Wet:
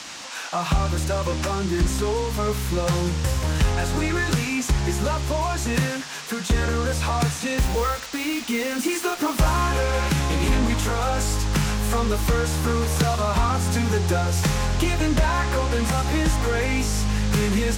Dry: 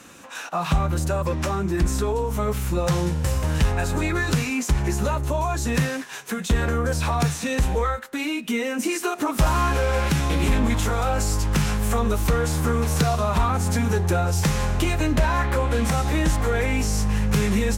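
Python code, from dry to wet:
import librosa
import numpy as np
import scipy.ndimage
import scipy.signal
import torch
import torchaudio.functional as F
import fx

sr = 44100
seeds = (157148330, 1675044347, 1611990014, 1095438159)

y = fx.quant_dither(x, sr, seeds[0], bits=6, dither='none', at=(7.58, 9.4))
y = fx.rev_double_slope(y, sr, seeds[1], early_s=0.55, late_s=3.9, knee_db=-18, drr_db=15.0)
y = fx.dmg_noise_band(y, sr, seeds[2], low_hz=650.0, high_hz=7000.0, level_db=-38.0)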